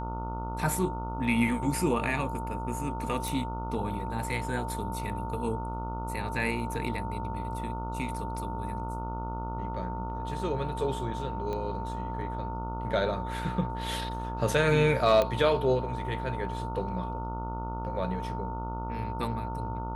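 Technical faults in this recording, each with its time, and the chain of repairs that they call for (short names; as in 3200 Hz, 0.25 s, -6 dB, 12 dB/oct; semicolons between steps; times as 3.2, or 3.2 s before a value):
buzz 60 Hz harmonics 24 -36 dBFS
tone 900 Hz -37 dBFS
3.28 pop
11.53 pop -23 dBFS
15.22 pop -14 dBFS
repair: de-click; notch 900 Hz, Q 30; de-hum 60 Hz, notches 24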